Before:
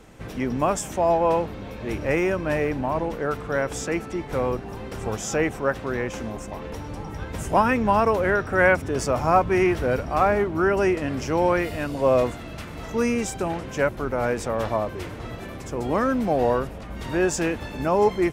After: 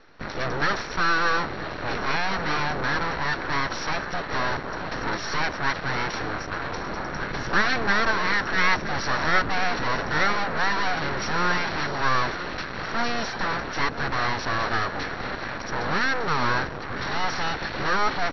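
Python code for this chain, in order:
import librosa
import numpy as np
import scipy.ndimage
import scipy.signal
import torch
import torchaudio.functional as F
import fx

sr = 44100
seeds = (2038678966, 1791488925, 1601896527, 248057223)

p1 = np.abs(x)
p2 = p1 + 10.0 ** (-23.5 / 20.0) * np.pad(p1, (int(966 * sr / 1000.0), 0))[:len(p1)]
p3 = fx.fuzz(p2, sr, gain_db=32.0, gate_db=-37.0)
p4 = p2 + (p3 * 10.0 ** (-10.5 / 20.0))
p5 = scipy.signal.sosfilt(scipy.signal.cheby1(6, 9, 5800.0, 'lowpass', fs=sr, output='sos'), p4)
y = p5 * 10.0 ** (4.0 / 20.0)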